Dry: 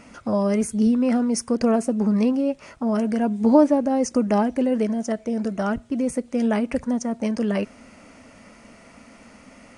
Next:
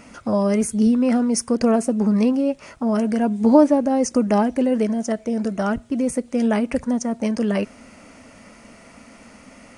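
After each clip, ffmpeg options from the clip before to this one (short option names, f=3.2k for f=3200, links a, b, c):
-af "highshelf=f=9k:g=5,volume=2dB"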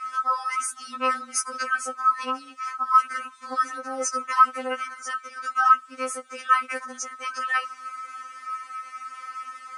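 -af "highpass=f=1.3k:t=q:w=15,afftfilt=real='re*3.46*eq(mod(b,12),0)':imag='im*3.46*eq(mod(b,12),0)':win_size=2048:overlap=0.75,volume=1dB"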